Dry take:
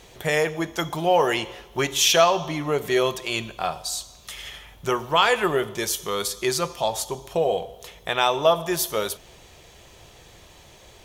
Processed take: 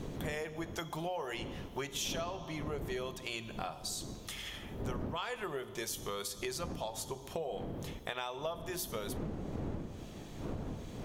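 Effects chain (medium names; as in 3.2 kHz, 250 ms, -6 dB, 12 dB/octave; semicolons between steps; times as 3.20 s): wind noise 280 Hz -28 dBFS; hum notches 60/120/180/240/300/360 Hz; compression 6:1, threshold -30 dBFS, peak gain reduction 18 dB; trim -6 dB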